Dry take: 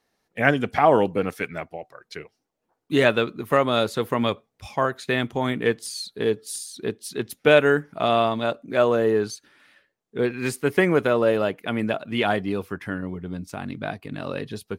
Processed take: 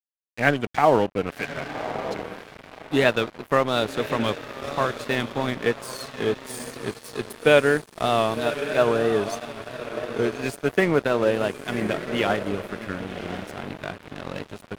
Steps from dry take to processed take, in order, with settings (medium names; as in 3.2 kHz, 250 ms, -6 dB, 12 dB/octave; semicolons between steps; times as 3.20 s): echo that smears into a reverb 1111 ms, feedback 44%, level -7.5 dB; crossover distortion -32 dBFS; vibrato 3 Hz 55 cents